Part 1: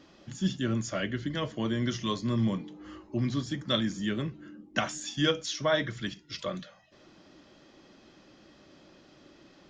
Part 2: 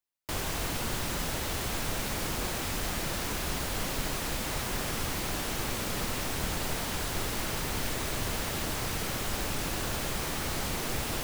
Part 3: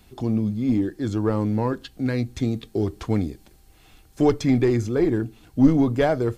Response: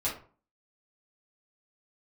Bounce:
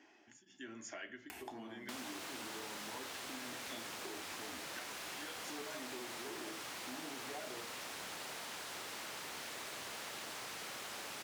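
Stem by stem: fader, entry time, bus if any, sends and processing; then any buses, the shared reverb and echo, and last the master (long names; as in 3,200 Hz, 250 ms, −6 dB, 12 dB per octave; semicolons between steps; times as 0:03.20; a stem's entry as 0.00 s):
−2.0 dB, 0.00 s, bus A, send −20 dB, tremolo along a rectified sine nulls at 1.1 Hz
−4.5 dB, 1.60 s, no bus, no send, no processing
−3.0 dB, 1.30 s, bus A, send −19.5 dB, upward compression, threshold −22 dBFS; hard clipping −19.5 dBFS, distortion −9 dB
bus A: 0.0 dB, phaser with its sweep stopped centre 800 Hz, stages 8; downward compressor, threshold −39 dBFS, peak gain reduction 14.5 dB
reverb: on, RT60 0.40 s, pre-delay 4 ms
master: meter weighting curve A; downward compressor 2.5 to 1, threshold −46 dBFS, peak gain reduction 9 dB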